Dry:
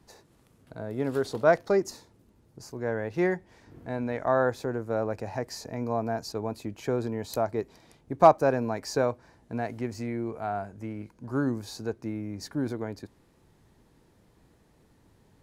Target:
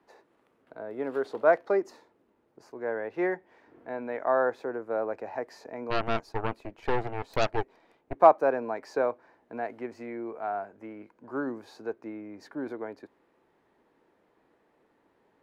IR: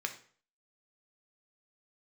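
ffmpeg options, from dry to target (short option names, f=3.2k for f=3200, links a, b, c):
-filter_complex "[0:a]acrossover=split=280 2800:gain=0.0708 1 0.126[a][b][c];[a][b][c]amix=inputs=3:normalize=0,asplit=3[d][e][f];[d]afade=t=out:st=5.9:d=0.02[g];[e]aeval=exprs='0.158*(cos(1*acos(clip(val(0)/0.158,-1,1)))-cos(1*PI/2))+0.00447*(cos(7*acos(clip(val(0)/0.158,-1,1)))-cos(7*PI/2))+0.0447*(cos(8*acos(clip(val(0)/0.158,-1,1)))-cos(8*PI/2))':c=same,afade=t=in:st=5.9:d=0.02,afade=t=out:st=8.15:d=0.02[h];[f]afade=t=in:st=8.15:d=0.02[i];[g][h][i]amix=inputs=3:normalize=0"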